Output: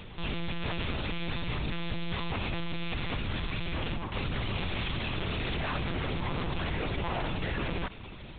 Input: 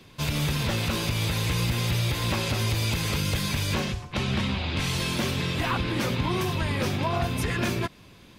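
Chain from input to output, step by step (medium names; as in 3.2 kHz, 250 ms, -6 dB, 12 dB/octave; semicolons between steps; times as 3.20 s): in parallel at +2.5 dB: peak limiter -24 dBFS, peak gain reduction 8 dB; on the sum: saturation -30 dBFS, distortion -7 dB; monotone LPC vocoder at 8 kHz 170 Hz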